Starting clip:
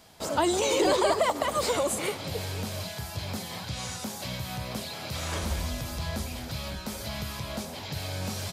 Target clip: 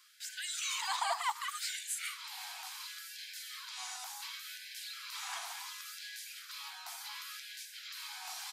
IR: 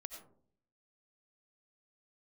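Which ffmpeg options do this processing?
-af "afftfilt=real='re*gte(b*sr/1024,670*pow(1500/670,0.5+0.5*sin(2*PI*0.69*pts/sr)))':imag='im*gte(b*sr/1024,670*pow(1500/670,0.5+0.5*sin(2*PI*0.69*pts/sr)))':win_size=1024:overlap=0.75,volume=-5.5dB"

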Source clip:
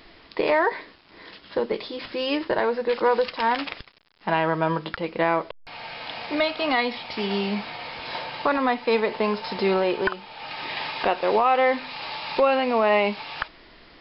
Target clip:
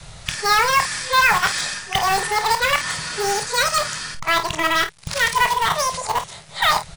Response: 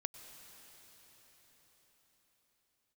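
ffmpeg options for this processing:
-filter_complex "[0:a]areverse,adynamicequalizer=threshold=0.0112:dfrequency=320:dqfactor=2:tfrequency=320:tqfactor=2:attack=5:release=100:ratio=0.375:range=2.5:mode=cutabove:tftype=bell,asetrate=88641,aresample=44100,asplit=2[link_01][link_02];[link_02]aeval=exprs='(mod(10.6*val(0)+1,2)-1)/10.6':channel_layout=same,volume=-9.5dB[link_03];[link_01][link_03]amix=inputs=2:normalize=0,lowshelf=frequency=210:width_type=q:width=3:gain=8.5,asplit=2[link_04][link_05];[link_05]aecho=0:1:25|51:0.316|0.251[link_06];[link_04][link_06]amix=inputs=2:normalize=0,volume=4dB"

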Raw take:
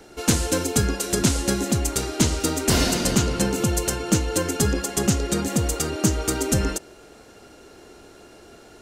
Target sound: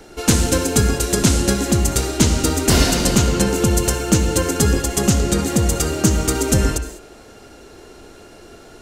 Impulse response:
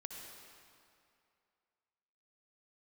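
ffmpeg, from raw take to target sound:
-filter_complex "[0:a]asplit=2[link_01][link_02];[1:a]atrim=start_sample=2205,afade=type=out:start_time=0.26:duration=0.01,atrim=end_sample=11907,lowshelf=frequency=72:gain=11[link_03];[link_02][link_03]afir=irnorm=-1:irlink=0,volume=4.5dB[link_04];[link_01][link_04]amix=inputs=2:normalize=0,volume=-1.5dB"

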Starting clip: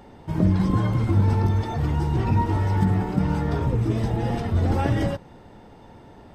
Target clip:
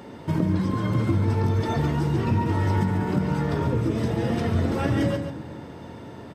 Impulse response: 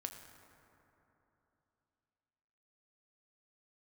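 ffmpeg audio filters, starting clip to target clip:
-filter_complex "[0:a]highpass=130,equalizer=frequency=790:width_type=o:width=0.23:gain=-10,acompressor=threshold=-28dB:ratio=6,aecho=1:1:141:0.398,asplit=2[link_01][link_02];[1:a]atrim=start_sample=2205,lowshelf=frequency=130:gain=5.5[link_03];[link_02][link_03]afir=irnorm=-1:irlink=0,volume=-0.5dB[link_04];[link_01][link_04]amix=inputs=2:normalize=0,volume=2.5dB"

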